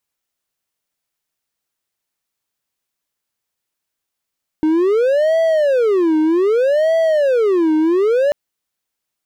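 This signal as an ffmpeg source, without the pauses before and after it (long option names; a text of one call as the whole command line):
ffmpeg -f lavfi -i "aevalsrc='0.335*(1-4*abs(mod((482.5*t-172.5/(2*PI*0.64)*sin(2*PI*0.64*t))+0.25,1)-0.5))':duration=3.69:sample_rate=44100" out.wav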